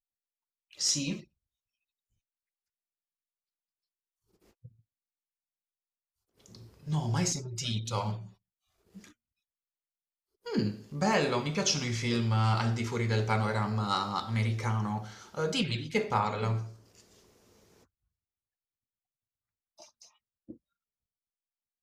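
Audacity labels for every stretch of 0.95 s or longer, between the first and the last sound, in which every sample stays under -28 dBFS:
1.130000	6.900000	silence
8.110000	10.520000	silence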